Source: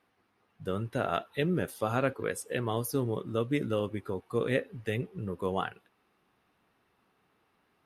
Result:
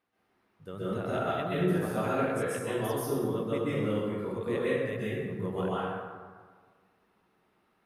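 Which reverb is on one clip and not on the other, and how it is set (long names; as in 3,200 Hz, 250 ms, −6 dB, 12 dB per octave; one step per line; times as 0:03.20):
dense smooth reverb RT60 1.6 s, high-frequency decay 0.5×, pre-delay 115 ms, DRR −9.5 dB
level −9.5 dB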